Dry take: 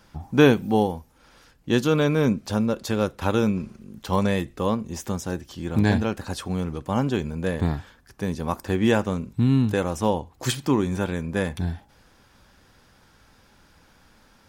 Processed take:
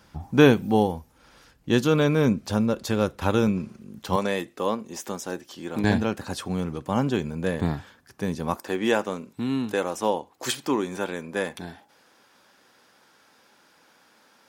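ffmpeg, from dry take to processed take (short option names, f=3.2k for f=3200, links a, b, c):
-af "asetnsamples=n=441:p=0,asendcmd='3.47 highpass f 95;4.16 highpass f 290;5.84 highpass f 110;8.56 highpass f 310',highpass=40"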